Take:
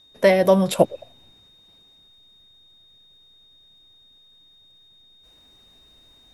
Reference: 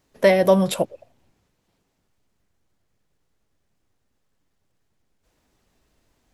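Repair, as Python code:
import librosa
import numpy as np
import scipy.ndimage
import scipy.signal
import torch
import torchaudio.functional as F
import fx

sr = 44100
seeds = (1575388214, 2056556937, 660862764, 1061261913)

y = fx.notch(x, sr, hz=3700.0, q=30.0)
y = fx.fix_level(y, sr, at_s=0.79, step_db=-6.5)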